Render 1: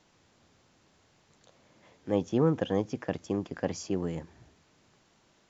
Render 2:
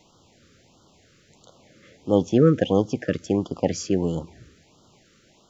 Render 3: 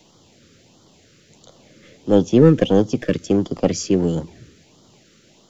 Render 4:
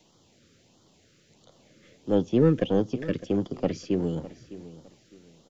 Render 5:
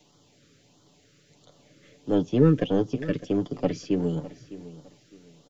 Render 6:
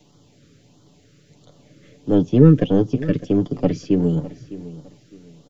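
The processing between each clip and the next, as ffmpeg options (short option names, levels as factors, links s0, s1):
-af "afftfilt=real='re*(1-between(b*sr/1024,790*pow(2100/790,0.5+0.5*sin(2*PI*1.5*pts/sr))/1.41,790*pow(2100/790,0.5+0.5*sin(2*PI*1.5*pts/sr))*1.41))':imag='im*(1-between(b*sr/1024,790*pow(2100/790,0.5+0.5*sin(2*PI*1.5*pts/sr))/1.41,790*pow(2100/790,0.5+0.5*sin(2*PI*1.5*pts/sr))*1.41))':win_size=1024:overlap=0.75,volume=2.66"
-filter_complex "[0:a]highpass=86,acrossover=split=140|650|2100[s0][s1][s2][s3];[s2]aeval=exprs='max(val(0),0)':c=same[s4];[s0][s1][s4][s3]amix=inputs=4:normalize=0,volume=1.88"
-filter_complex "[0:a]acrossover=split=4600[s0][s1];[s1]acompressor=threshold=0.00224:ratio=4:attack=1:release=60[s2];[s0][s2]amix=inputs=2:normalize=0,aecho=1:1:607|1214|1821:0.15|0.0434|0.0126,volume=0.376"
-af "aecho=1:1:6.9:0.48"
-af "lowshelf=f=370:g=9,volume=1.19"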